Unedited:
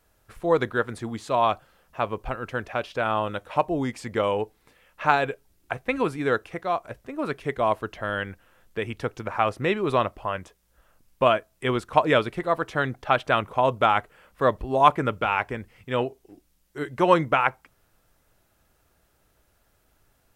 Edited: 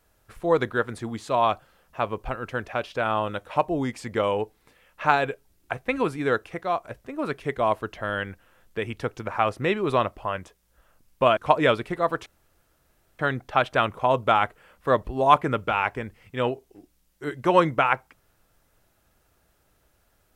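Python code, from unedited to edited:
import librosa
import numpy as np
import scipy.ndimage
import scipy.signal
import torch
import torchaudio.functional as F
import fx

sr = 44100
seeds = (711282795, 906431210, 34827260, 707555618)

y = fx.edit(x, sr, fx.cut(start_s=11.37, length_s=0.47),
    fx.insert_room_tone(at_s=12.73, length_s=0.93), tone=tone)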